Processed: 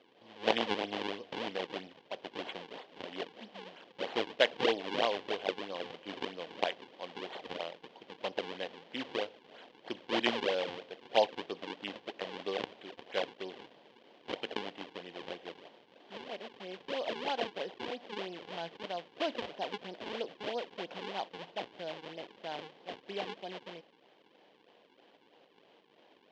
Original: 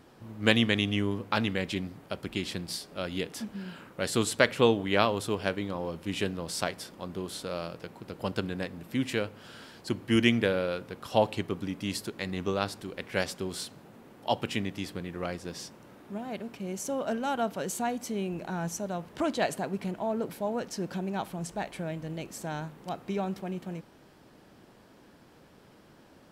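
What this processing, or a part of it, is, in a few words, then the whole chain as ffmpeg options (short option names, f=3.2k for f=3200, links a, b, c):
circuit-bent sampling toy: -filter_complex "[0:a]lowpass=f=5k:w=0.5412,lowpass=f=5k:w=1.3066,asettb=1/sr,asplit=3[a][b][c];[a]atrim=end=6.464[d];[b]atrim=start=6.46:end=7.7,asetpts=PTS-STARTPTS,afade=t=in:d=0.004:c=qsin,afade=t=out:st=1.236:d=0.004:c=qsin,equalizer=f=2.4k:w=0.42:g=3.5[e];[c]atrim=start=7.696[f];[d][e]acrossfade=d=0.004:c1=hsin:c2=qsin[g];[g][f]acrossfade=d=0.004:c1=qsin:c2=hsin,acrusher=samples=40:mix=1:aa=0.000001:lfo=1:lforange=64:lforate=3.1,highpass=430,equalizer=f=490:t=q:w=4:g=3,equalizer=f=730:t=q:w=4:g=3,equalizer=f=1.3k:t=q:w=4:g=-8,equalizer=f=3.1k:t=q:w=4:g=8,lowpass=f=4.5k:w=0.5412,lowpass=f=4.5k:w=1.3066,volume=-3.5dB"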